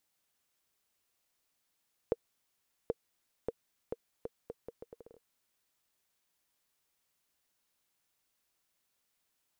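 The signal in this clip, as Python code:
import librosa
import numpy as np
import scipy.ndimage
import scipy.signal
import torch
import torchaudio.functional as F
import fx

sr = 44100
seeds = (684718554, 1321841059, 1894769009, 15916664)

y = fx.bouncing_ball(sr, first_gap_s=0.78, ratio=0.75, hz=466.0, decay_ms=36.0, level_db=-17.0)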